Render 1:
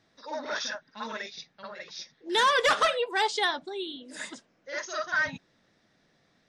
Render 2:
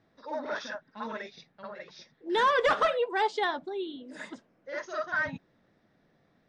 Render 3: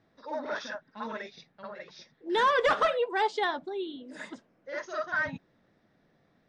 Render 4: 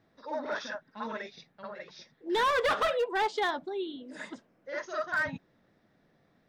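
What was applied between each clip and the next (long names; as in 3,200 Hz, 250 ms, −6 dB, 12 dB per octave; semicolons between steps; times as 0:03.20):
low-pass filter 1,100 Hz 6 dB per octave; level +2 dB
no processing that can be heard
hard clipping −23.5 dBFS, distortion −13 dB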